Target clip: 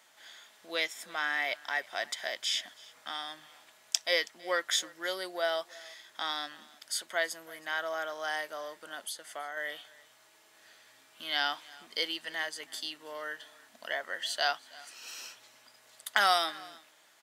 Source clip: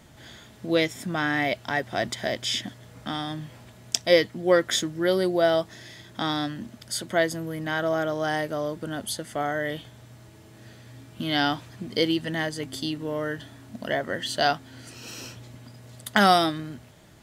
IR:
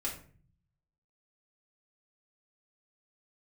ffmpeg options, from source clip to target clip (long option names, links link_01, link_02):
-filter_complex "[0:a]highpass=920,asettb=1/sr,asplit=3[link_01][link_02][link_03];[link_01]atrim=end=9.064[link_04];[link_02]atrim=start=9.06:end=9.57,asetpts=PTS-STARTPTS,afade=type=in:duration=0.004:curve=qsin,afade=type=out:start_time=0.506:duration=0.004:curve=qsin,acompressor=threshold=-33dB:ratio=4[link_05];[link_03]atrim=start=9.566[link_06];[link_04][link_05]acrossfade=duration=0.004:curve1=hsin:curve2=qsin[link_07];[link_07][link_06]acrossfade=duration=0.004:curve1=qsin:curve2=hsin,aecho=1:1:324:0.075,volume=-3.5dB"